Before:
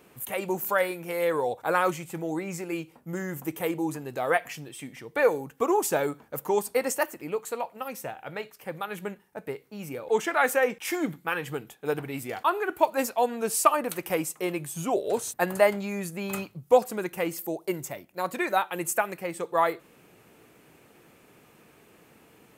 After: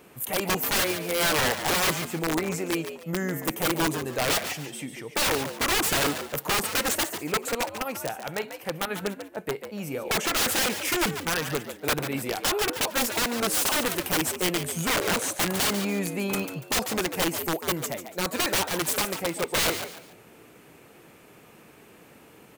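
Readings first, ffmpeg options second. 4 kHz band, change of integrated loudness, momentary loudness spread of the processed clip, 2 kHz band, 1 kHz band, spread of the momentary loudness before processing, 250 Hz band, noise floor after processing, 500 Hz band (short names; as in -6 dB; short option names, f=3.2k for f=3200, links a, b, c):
+14.5 dB, +2.0 dB, 9 LU, +3.5 dB, -2.0 dB, 14 LU, +2.5 dB, -52 dBFS, -3.5 dB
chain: -filter_complex "[0:a]aeval=exprs='(mod(14.1*val(0)+1,2)-1)/14.1':c=same,asplit=4[a][b][c][d];[b]adelay=143,afreqshift=82,volume=-9.5dB[e];[c]adelay=286,afreqshift=164,volume=-19.7dB[f];[d]adelay=429,afreqshift=246,volume=-29.8dB[g];[a][e][f][g]amix=inputs=4:normalize=0,volume=4dB"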